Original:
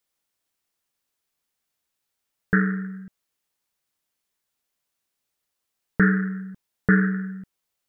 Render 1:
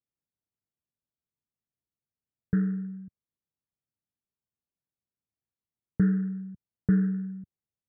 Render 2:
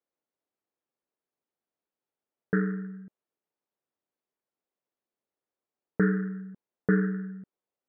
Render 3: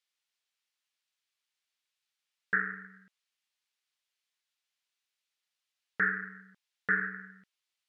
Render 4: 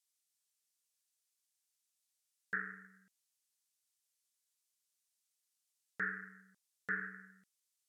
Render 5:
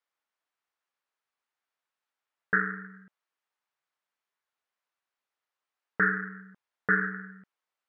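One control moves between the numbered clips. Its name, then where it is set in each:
band-pass filter, frequency: 110 Hz, 410 Hz, 3.1 kHz, 7.9 kHz, 1.2 kHz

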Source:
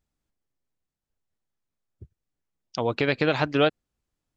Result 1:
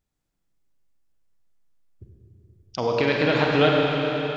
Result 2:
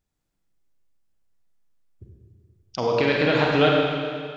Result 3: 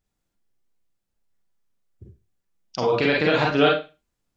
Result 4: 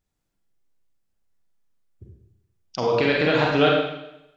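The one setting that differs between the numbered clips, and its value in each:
Schroeder reverb, RT60: 4.3 s, 2.1 s, 0.3 s, 0.87 s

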